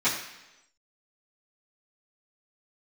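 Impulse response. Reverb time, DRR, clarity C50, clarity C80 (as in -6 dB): 1.0 s, -14.0 dB, 5.5 dB, 8.0 dB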